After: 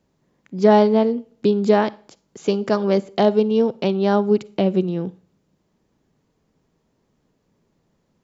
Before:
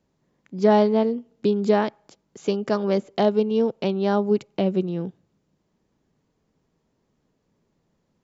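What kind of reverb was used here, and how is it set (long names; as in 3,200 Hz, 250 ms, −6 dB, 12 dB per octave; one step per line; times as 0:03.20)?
four-comb reverb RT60 0.41 s, DRR 20 dB
level +3.5 dB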